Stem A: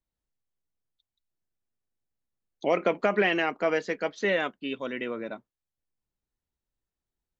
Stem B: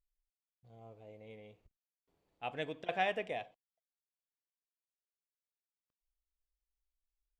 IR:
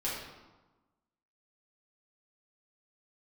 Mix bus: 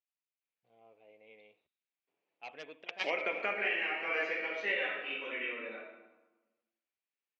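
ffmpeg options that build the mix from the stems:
-filter_complex "[0:a]equalizer=frequency=1900:width=1.3:gain=5,adelay=400,volume=-11dB,asplit=2[link_01][link_02];[link_02]volume=-4.5dB[link_03];[1:a]highshelf=frequency=4300:gain=-11,aeval=exprs='0.0794*(cos(1*acos(clip(val(0)/0.0794,-1,1)))-cos(1*PI/2))+0.0398*(cos(3*acos(clip(val(0)/0.0794,-1,1)))-cos(3*PI/2))':channel_layout=same,volume=1dB,asplit=2[link_04][link_05];[link_05]apad=whole_len=343846[link_06];[link_01][link_06]sidechaingate=range=-33dB:threshold=-60dB:ratio=16:detection=peak[link_07];[2:a]atrim=start_sample=2205[link_08];[link_03][link_08]afir=irnorm=-1:irlink=0[link_09];[link_07][link_04][link_09]amix=inputs=3:normalize=0,highpass=350,lowpass=6000,equalizer=frequency=2500:width_type=o:width=0.68:gain=11.5,alimiter=limit=-21.5dB:level=0:latency=1:release=416"

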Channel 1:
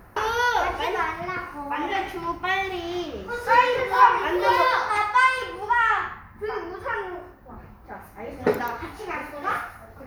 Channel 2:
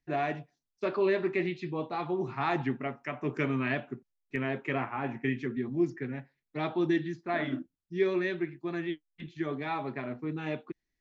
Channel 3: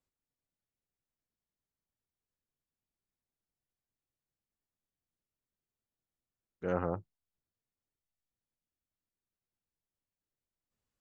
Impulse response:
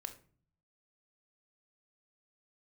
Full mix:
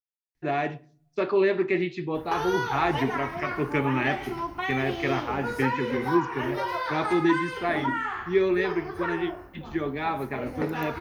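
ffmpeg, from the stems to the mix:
-filter_complex "[0:a]acompressor=threshold=-26dB:ratio=6,adelay=2150,volume=-1dB[link_01];[1:a]adelay=350,volume=1.5dB,asplit=2[link_02][link_03];[link_03]volume=-3.5dB[link_04];[3:a]atrim=start_sample=2205[link_05];[link_04][link_05]afir=irnorm=-1:irlink=0[link_06];[link_01][link_02][link_06]amix=inputs=3:normalize=0"

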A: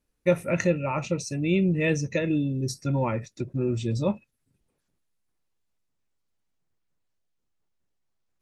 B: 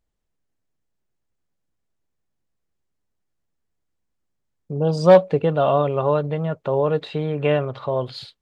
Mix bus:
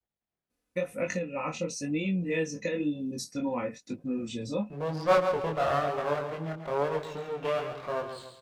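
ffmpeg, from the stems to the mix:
ffmpeg -i stem1.wav -i stem2.wav -filter_complex "[0:a]aecho=1:1:4:0.69,acompressor=threshold=-23dB:ratio=6,adelay=500,volume=0dB[link_01];[1:a]lowpass=4000,equalizer=frequency=720:width_type=o:width=0.21:gain=6,aeval=exprs='max(val(0),0)':channel_layout=same,volume=-2dB,asplit=2[link_02][link_03];[link_03]volume=-8dB,aecho=0:1:138|276|414|552|690:1|0.34|0.116|0.0393|0.0134[link_04];[link_01][link_02][link_04]amix=inputs=3:normalize=0,flanger=delay=19.5:depth=5.8:speed=1,highpass=frequency=140:poles=1" out.wav

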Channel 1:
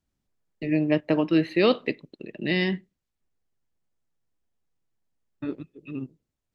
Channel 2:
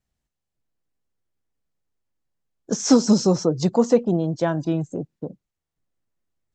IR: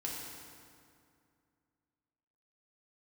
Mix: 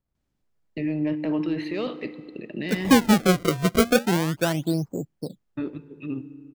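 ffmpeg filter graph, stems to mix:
-filter_complex "[0:a]highshelf=frequency=5500:gain=-5.5,acontrast=85,alimiter=limit=-16.5dB:level=0:latency=1:release=20,adelay=150,volume=-6dB,asplit=2[link_01][link_02];[link_02]volume=-12.5dB[link_03];[1:a]equalizer=frequency=5100:width=0.51:gain=-13,acrusher=samples=29:mix=1:aa=0.000001:lfo=1:lforange=46.4:lforate=0.35,volume=-1dB[link_04];[2:a]atrim=start_sample=2205[link_05];[link_03][link_05]afir=irnorm=-1:irlink=0[link_06];[link_01][link_04][link_06]amix=inputs=3:normalize=0"

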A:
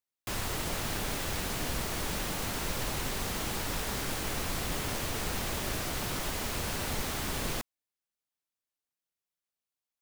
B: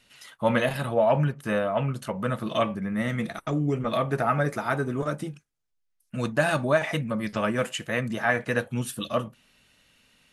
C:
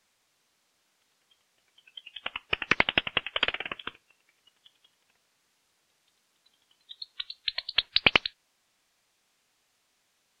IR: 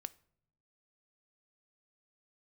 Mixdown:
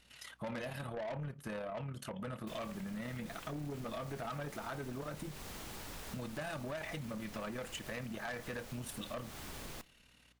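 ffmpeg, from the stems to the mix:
-filter_complex "[0:a]adelay=2200,volume=-9.5dB,asplit=2[link_01][link_02];[link_02]volume=-4.5dB[link_03];[1:a]tremolo=f=36:d=0.571,volume=-1.5dB,asplit=2[link_04][link_05];[2:a]lowpass=frequency=2600:poles=1,volume=-5dB[link_06];[link_05]apad=whole_len=458646[link_07];[link_06][link_07]sidechaincompress=threshold=-34dB:ratio=8:attack=16:release=710[link_08];[link_01][link_08]amix=inputs=2:normalize=0,aeval=exprs='val(0)+0.000251*(sin(2*PI*60*n/s)+sin(2*PI*2*60*n/s)/2+sin(2*PI*3*60*n/s)/3+sin(2*PI*4*60*n/s)/4+sin(2*PI*5*60*n/s)/5)':channel_layout=same,acompressor=threshold=-49dB:ratio=6,volume=0dB[link_09];[3:a]atrim=start_sample=2205[link_10];[link_03][link_10]afir=irnorm=-1:irlink=0[link_11];[link_04][link_09][link_11]amix=inputs=3:normalize=0,asoftclip=type=tanh:threshold=-28dB,acompressor=threshold=-41dB:ratio=4"

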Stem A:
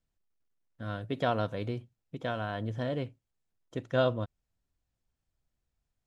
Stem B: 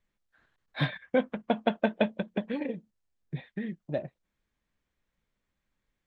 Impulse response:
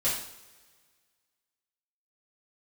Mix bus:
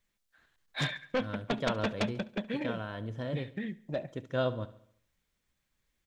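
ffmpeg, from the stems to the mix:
-filter_complex "[0:a]bandreject=frequency=720:width=12,adelay=400,volume=-3.5dB,asplit=2[link_01][link_02];[link_02]volume=-16.5dB[link_03];[1:a]highshelf=frequency=2500:gain=10,aeval=exprs='0.335*sin(PI/2*2.82*val(0)/0.335)':channel_layout=same,volume=-15dB,asplit=2[link_04][link_05];[link_05]volume=-21dB[link_06];[link_03][link_06]amix=inputs=2:normalize=0,aecho=0:1:70|140|210|280|350|420|490:1|0.49|0.24|0.118|0.0576|0.0282|0.0138[link_07];[link_01][link_04][link_07]amix=inputs=3:normalize=0"

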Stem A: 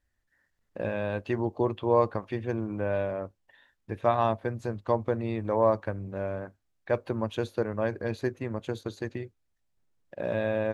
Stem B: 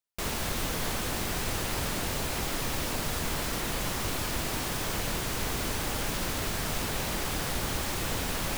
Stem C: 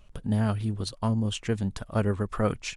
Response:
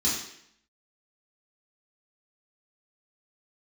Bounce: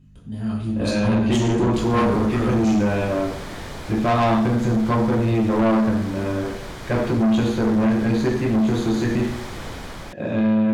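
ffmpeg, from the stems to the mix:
-filter_complex "[0:a]equalizer=frequency=220:width_type=o:width=0.27:gain=7,volume=2dB,asplit=2[link_01][link_02];[link_02]volume=-8.5dB[link_03];[1:a]aemphasis=mode=reproduction:type=50fm,bandreject=frequency=2700:width=11,adelay=1550,volume=-8.5dB[link_04];[2:a]aeval=exprs='val(0)+0.0141*(sin(2*PI*50*n/s)+sin(2*PI*2*50*n/s)/2+sin(2*PI*3*50*n/s)/3+sin(2*PI*4*50*n/s)/4+sin(2*PI*5*50*n/s)/5)':channel_layout=same,dynaudnorm=framelen=210:gausssize=5:maxgain=10.5dB,volume=-13.5dB,asplit=2[link_05][link_06];[link_06]volume=-6.5dB[link_07];[3:a]atrim=start_sample=2205[link_08];[link_03][link_07]amix=inputs=2:normalize=0[link_09];[link_09][link_08]afir=irnorm=-1:irlink=0[link_10];[link_01][link_04][link_05][link_10]amix=inputs=4:normalize=0,dynaudnorm=framelen=180:gausssize=9:maxgain=10.5dB,asoftclip=type=tanh:threshold=-14.5dB"

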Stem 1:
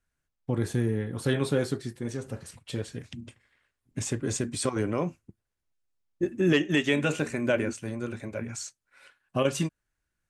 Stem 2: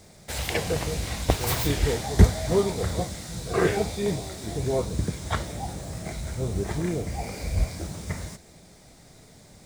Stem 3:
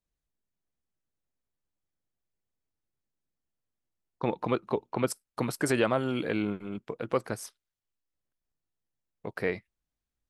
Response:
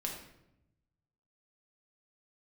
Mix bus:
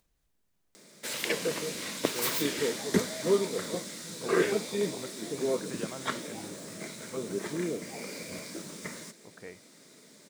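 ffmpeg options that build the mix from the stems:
-filter_complex "[1:a]highpass=frequency=210:width=0.5412,highpass=frequency=210:width=1.3066,equalizer=frequency=760:width_type=o:width=0.34:gain=-14.5,adelay=750,volume=-1.5dB[link_01];[2:a]volume=-16dB[link_02];[link_01][link_02]amix=inputs=2:normalize=0,acompressor=mode=upward:threshold=-53dB:ratio=2.5"

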